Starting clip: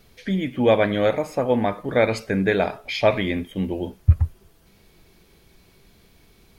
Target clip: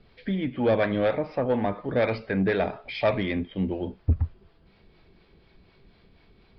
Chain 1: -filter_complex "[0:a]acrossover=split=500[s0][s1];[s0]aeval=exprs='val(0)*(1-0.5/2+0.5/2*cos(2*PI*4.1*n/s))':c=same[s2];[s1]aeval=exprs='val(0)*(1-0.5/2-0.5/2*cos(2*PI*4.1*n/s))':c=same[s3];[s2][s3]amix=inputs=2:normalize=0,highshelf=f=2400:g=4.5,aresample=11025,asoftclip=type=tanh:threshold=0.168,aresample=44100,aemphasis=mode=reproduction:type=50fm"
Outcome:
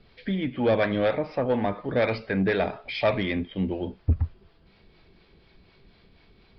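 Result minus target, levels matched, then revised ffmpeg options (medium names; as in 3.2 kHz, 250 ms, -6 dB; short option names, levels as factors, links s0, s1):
4 kHz band +2.5 dB
-filter_complex "[0:a]acrossover=split=500[s0][s1];[s0]aeval=exprs='val(0)*(1-0.5/2+0.5/2*cos(2*PI*4.1*n/s))':c=same[s2];[s1]aeval=exprs='val(0)*(1-0.5/2-0.5/2*cos(2*PI*4.1*n/s))':c=same[s3];[s2][s3]amix=inputs=2:normalize=0,aresample=11025,asoftclip=type=tanh:threshold=0.168,aresample=44100,aemphasis=mode=reproduction:type=50fm"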